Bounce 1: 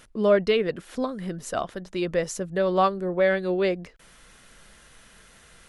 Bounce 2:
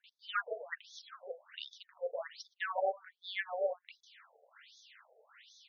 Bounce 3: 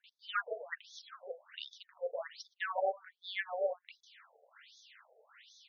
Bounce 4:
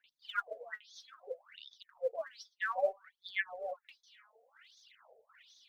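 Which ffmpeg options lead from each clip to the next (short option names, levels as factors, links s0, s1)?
-filter_complex "[0:a]acrossover=split=950[s0][s1];[s1]adelay=40[s2];[s0][s2]amix=inputs=2:normalize=0,afftfilt=real='re*lt(hypot(re,im),0.501)':imag='im*lt(hypot(re,im),0.501)':win_size=1024:overlap=0.75,afftfilt=real='re*between(b*sr/1024,560*pow(4800/560,0.5+0.5*sin(2*PI*1.3*pts/sr))/1.41,560*pow(4800/560,0.5+0.5*sin(2*PI*1.3*pts/sr))*1.41)':imag='im*between(b*sr/1024,560*pow(4800/560,0.5+0.5*sin(2*PI*1.3*pts/sr))/1.41,560*pow(4800/560,0.5+0.5*sin(2*PI*1.3*pts/sr))*1.41)':win_size=1024:overlap=0.75,volume=1.12"
-af anull
-af "aphaser=in_gain=1:out_gain=1:delay=4.8:decay=0.7:speed=0.59:type=sinusoidal,volume=0.562"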